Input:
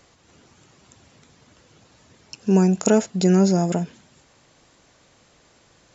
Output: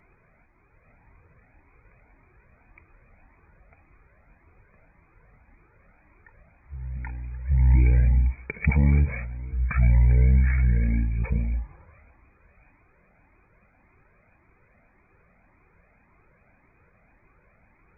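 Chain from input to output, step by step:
echo ahead of the sound 259 ms −16.5 dB
change of speed 0.331×
flanger whose copies keep moving one way rising 1.8 Hz

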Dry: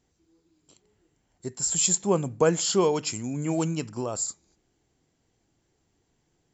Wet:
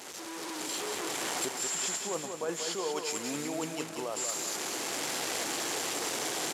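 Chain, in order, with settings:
linear delta modulator 64 kbit/s, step −35 dBFS
camcorder AGC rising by 20 dB per second
high-pass filter 430 Hz 12 dB per octave
reversed playback
downward compressor, threshold −30 dBFS, peak gain reduction 12.5 dB
reversed playback
repeating echo 187 ms, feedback 50%, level −6 dB
level −2 dB

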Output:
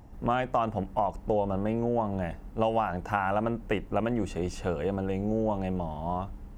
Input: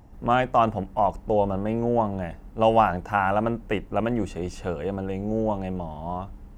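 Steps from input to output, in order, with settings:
downward compressor 6 to 1, threshold −23 dBFS, peak gain reduction 10 dB

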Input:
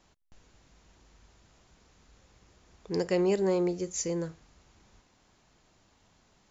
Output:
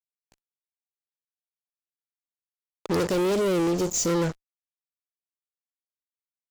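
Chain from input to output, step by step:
fuzz pedal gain 40 dB, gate −47 dBFS
0:03.07–0:04.08: drawn EQ curve 680 Hz 0 dB, 1,800 Hz −7 dB, 2,900 Hz −1 dB
wow of a warped record 45 rpm, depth 100 cents
level −8.5 dB

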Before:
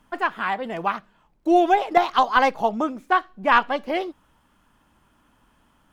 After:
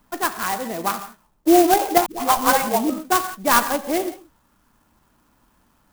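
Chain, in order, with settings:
reverb whose tail is shaped and stops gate 190 ms flat, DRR 9 dB
dynamic equaliser 290 Hz, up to +6 dB, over −35 dBFS, Q 1.6
0:02.06–0:02.90: all-pass dispersion highs, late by 143 ms, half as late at 470 Hz
converter with an unsteady clock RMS 0.072 ms

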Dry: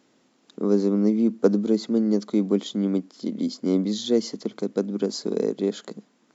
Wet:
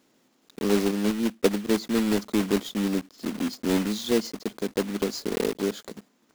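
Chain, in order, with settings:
one scale factor per block 3 bits
0:00.91–0:01.69: expander for the loud parts 1.5 to 1, over −32 dBFS
level −2.5 dB

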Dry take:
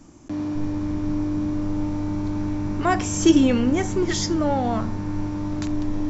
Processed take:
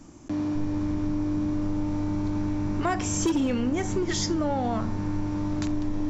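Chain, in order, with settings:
gain into a clipping stage and back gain 12.5 dB
downward compressor 4 to 1, threshold −23 dBFS, peak gain reduction 8 dB

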